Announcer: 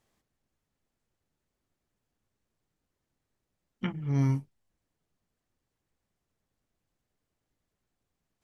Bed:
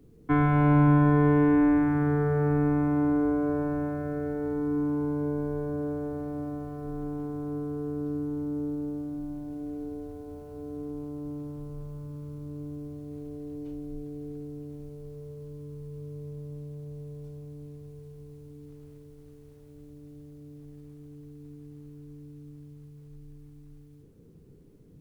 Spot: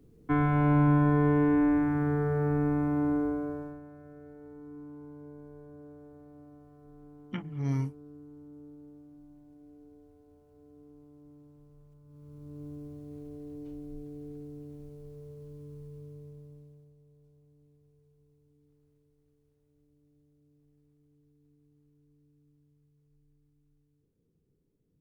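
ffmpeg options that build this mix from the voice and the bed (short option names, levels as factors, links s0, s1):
-filter_complex "[0:a]adelay=3500,volume=0.631[s0];[1:a]volume=3.35,afade=t=out:st=3.14:d=0.67:silence=0.177828,afade=t=in:st=12.04:d=0.63:silence=0.211349,afade=t=out:st=15.79:d=1.16:silence=0.16788[s1];[s0][s1]amix=inputs=2:normalize=0"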